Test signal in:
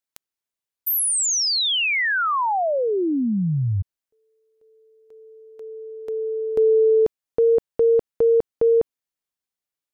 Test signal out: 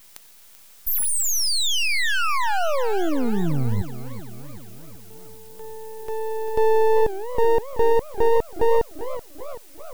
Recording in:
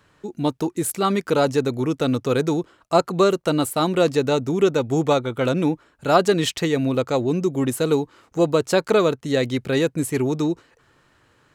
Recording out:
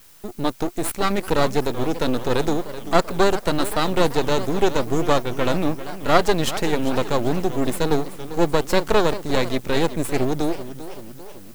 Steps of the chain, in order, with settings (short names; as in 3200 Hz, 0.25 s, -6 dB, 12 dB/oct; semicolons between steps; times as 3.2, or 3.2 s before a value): added noise blue -49 dBFS; half-wave rectifier; warbling echo 0.388 s, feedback 57%, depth 218 cents, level -13.5 dB; gain +3 dB